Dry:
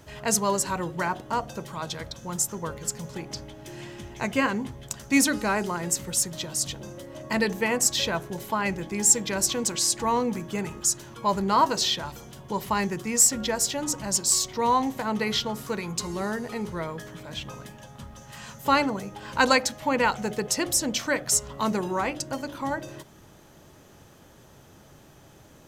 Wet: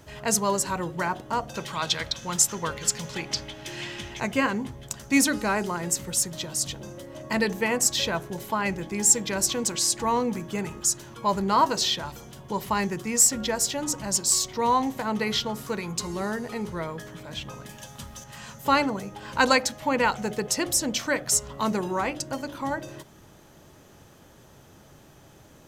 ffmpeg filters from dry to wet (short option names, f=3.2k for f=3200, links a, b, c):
-filter_complex "[0:a]asettb=1/sr,asplit=3[a][b][c];[a]atrim=end=1.544[d];[b]atrim=start=1.54:end=4.2,asetpts=PTS-STARTPTS,afade=t=in:d=0.004:c=qsin,afade=t=out:st=2.656:d=0.004:c=qsin,equalizer=f=3.1k:t=o:w=2.6:g=11.5[e];[c]atrim=start=4.196[f];[d][e]acrossfade=d=0.004:c1=hsin:c2=qsin[g];[g][f]acrossfade=d=0.004:c1=qsin:c2=hsin,asettb=1/sr,asplit=3[h][i][j];[h]atrim=end=17.694[k];[i]atrim=start=17.69:end=18.24,asetpts=PTS-STARTPTS,afade=t=in:d=0.004:c=qsin,afade=t=out:st=0.546:d=0.004:c=qsin,highshelf=f=2.5k:g=11[l];[j]atrim=start=18.236[m];[k][l]acrossfade=d=0.004:c1=hsin:c2=qsin[n];[n][m]acrossfade=d=0.004:c1=qsin:c2=hsin"